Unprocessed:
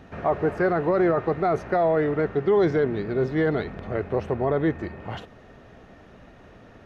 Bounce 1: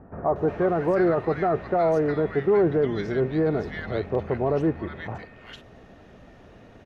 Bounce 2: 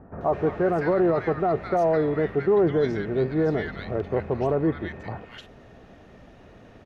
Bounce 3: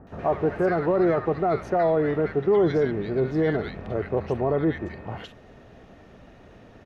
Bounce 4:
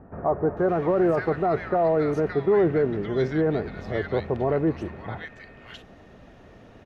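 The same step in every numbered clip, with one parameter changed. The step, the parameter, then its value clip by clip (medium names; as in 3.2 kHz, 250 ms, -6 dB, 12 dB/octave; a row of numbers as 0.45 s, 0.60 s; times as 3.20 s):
bands offset in time, time: 360 ms, 210 ms, 70 ms, 570 ms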